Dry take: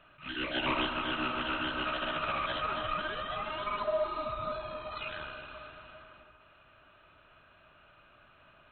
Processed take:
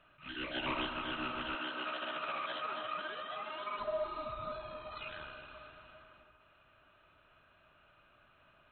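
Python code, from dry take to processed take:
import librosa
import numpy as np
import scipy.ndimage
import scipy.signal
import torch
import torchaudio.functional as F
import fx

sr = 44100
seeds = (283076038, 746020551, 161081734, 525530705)

y = fx.highpass(x, sr, hz=270.0, slope=12, at=(1.55, 3.79))
y = y * librosa.db_to_amplitude(-5.5)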